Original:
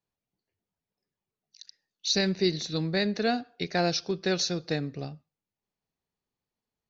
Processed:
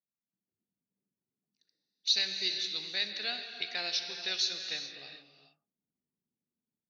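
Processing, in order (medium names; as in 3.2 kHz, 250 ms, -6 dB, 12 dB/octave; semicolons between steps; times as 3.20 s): auto-wah 220–3300 Hz, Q 2.3, up, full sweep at -30.5 dBFS; level rider gain up to 11.5 dB; gated-style reverb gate 460 ms flat, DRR 5.5 dB; trim -7.5 dB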